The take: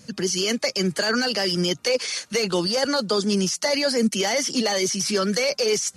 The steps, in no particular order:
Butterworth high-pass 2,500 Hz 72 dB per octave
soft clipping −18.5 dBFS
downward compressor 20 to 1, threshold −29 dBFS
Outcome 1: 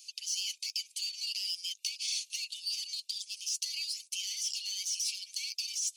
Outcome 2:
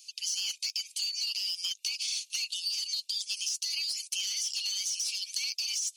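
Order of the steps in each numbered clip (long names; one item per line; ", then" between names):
soft clipping, then downward compressor, then Butterworth high-pass
Butterworth high-pass, then soft clipping, then downward compressor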